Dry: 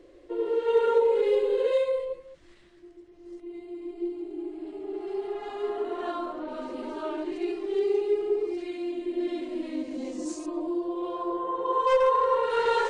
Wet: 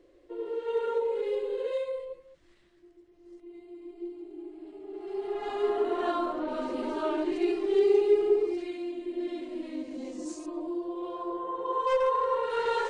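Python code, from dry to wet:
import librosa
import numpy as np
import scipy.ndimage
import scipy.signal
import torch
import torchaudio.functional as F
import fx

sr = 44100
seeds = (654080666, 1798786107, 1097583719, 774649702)

y = fx.gain(x, sr, db=fx.line((4.89, -7.0), (5.5, 3.0), (8.28, 3.0), (8.94, -4.0)))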